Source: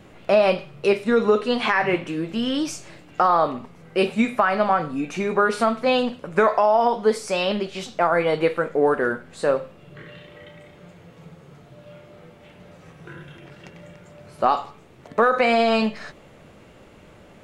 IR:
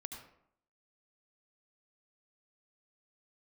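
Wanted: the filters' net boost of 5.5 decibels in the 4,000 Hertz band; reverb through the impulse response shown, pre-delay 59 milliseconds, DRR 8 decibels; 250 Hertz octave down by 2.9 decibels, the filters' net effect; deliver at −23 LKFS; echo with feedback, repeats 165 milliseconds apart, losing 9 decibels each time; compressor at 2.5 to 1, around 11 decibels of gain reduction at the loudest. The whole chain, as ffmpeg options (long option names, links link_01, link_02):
-filter_complex "[0:a]equalizer=frequency=250:width_type=o:gain=-3.5,equalizer=frequency=4000:width_type=o:gain=7.5,acompressor=threshold=-31dB:ratio=2.5,aecho=1:1:165|330|495|660:0.355|0.124|0.0435|0.0152,asplit=2[link_01][link_02];[1:a]atrim=start_sample=2205,adelay=59[link_03];[link_02][link_03]afir=irnorm=-1:irlink=0,volume=-5dB[link_04];[link_01][link_04]amix=inputs=2:normalize=0,volume=7dB"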